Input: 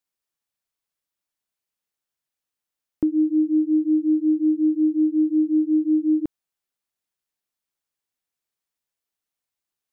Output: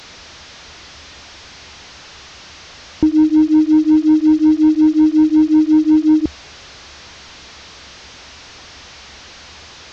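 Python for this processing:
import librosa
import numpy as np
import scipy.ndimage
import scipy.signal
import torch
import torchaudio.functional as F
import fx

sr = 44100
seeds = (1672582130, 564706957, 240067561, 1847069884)

y = fx.delta_mod(x, sr, bps=32000, step_db=-40.0)
y = fx.peak_eq(y, sr, hz=71.0, db=14.0, octaves=0.57)
y = y * 10.0 ** (8.0 / 20.0)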